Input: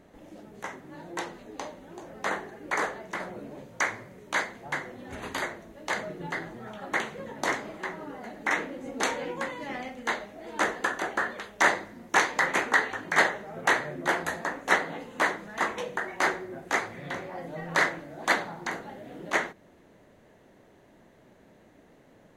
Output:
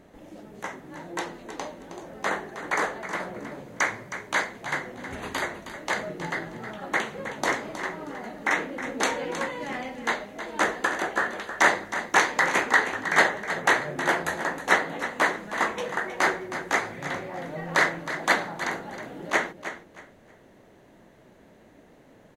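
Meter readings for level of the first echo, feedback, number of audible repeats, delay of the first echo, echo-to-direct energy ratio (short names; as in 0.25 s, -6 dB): -11.0 dB, 24%, 2, 0.316 s, -10.5 dB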